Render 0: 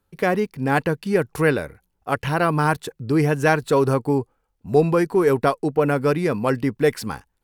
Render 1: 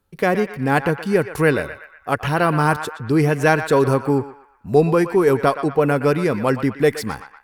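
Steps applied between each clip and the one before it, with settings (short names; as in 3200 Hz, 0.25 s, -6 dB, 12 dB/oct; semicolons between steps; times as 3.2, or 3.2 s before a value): narrowing echo 0.12 s, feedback 53%, band-pass 1600 Hz, level -9 dB; gain +2 dB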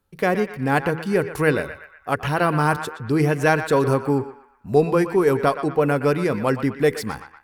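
de-hum 81.33 Hz, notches 6; gain -2 dB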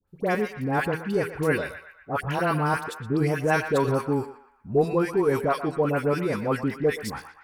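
dispersion highs, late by 78 ms, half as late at 1200 Hz; gain -4.5 dB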